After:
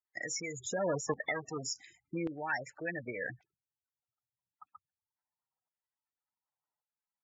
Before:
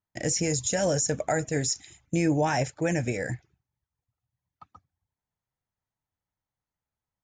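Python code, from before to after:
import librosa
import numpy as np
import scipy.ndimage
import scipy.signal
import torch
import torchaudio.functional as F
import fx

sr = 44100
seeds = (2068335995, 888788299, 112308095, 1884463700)

y = fx.halfwave_hold(x, sr, at=(0.54, 1.74))
y = fx.spec_gate(y, sr, threshold_db=-15, keep='strong')
y = fx.dynamic_eq(y, sr, hz=650.0, q=1.5, threshold_db=-37.0, ratio=4.0, max_db=-6)
y = fx.filter_lfo_bandpass(y, sr, shape='saw_down', hz=0.88, low_hz=940.0, high_hz=2800.0, q=1.2)
y = F.gain(torch.from_numpy(y), 2.5).numpy()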